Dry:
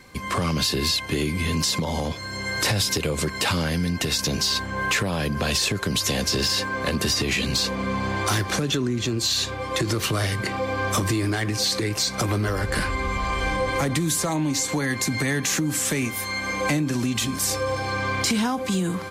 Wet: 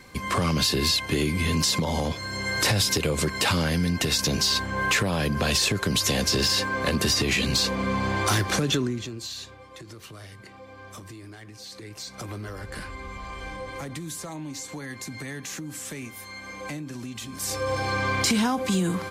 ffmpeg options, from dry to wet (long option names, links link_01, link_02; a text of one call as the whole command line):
ffmpeg -i in.wav -af "volume=19.5dB,afade=type=out:start_time=8.76:duration=0.31:silence=0.298538,afade=type=out:start_time=9.07:duration=0.64:silence=0.354813,afade=type=in:start_time=11.63:duration=0.66:silence=0.421697,afade=type=in:start_time=17.29:duration=0.51:silence=0.251189" out.wav